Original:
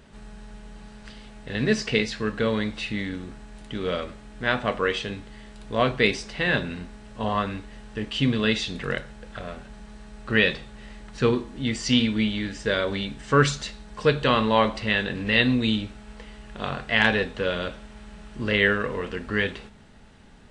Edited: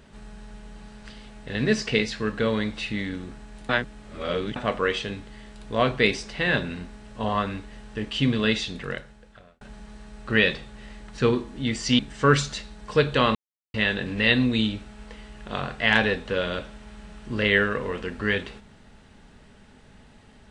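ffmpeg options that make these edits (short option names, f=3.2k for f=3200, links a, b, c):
-filter_complex "[0:a]asplit=7[a][b][c][d][e][f][g];[a]atrim=end=3.692[h];[b]atrim=start=3.688:end=4.562,asetpts=PTS-STARTPTS,areverse[i];[c]atrim=start=4.558:end=9.61,asetpts=PTS-STARTPTS,afade=t=out:st=3.962:d=1.09[j];[d]atrim=start=9.61:end=11.992,asetpts=PTS-STARTPTS,afade=t=in:d=0.004:c=hsin[k];[e]atrim=start=13.078:end=14.44,asetpts=PTS-STARTPTS,afade=t=out:st=1.358:d=0.004:c=hsin[l];[f]atrim=start=14.44:end=14.83,asetpts=PTS-STARTPTS,volume=0[m];[g]atrim=start=14.83,asetpts=PTS-STARTPTS,afade=t=in:d=0.004:c=hsin[n];[h][i]acrossfade=d=0.004:c1=hsin:c2=hsin[o];[j][k]concat=n=2:v=0:a=1[p];[o][p]acrossfade=d=0.004:c1=hsin:c2=hsin[q];[l][m][n]concat=n=3:v=0:a=1[r];[q][r]acrossfade=d=0.004:c1=hsin:c2=hsin"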